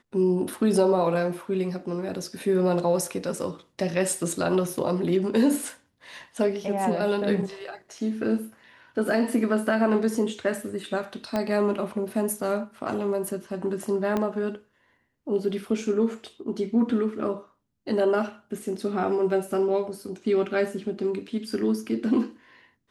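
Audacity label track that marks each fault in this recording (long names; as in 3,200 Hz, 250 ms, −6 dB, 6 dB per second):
11.360000	11.360000	click −14 dBFS
14.170000	14.170000	click −14 dBFS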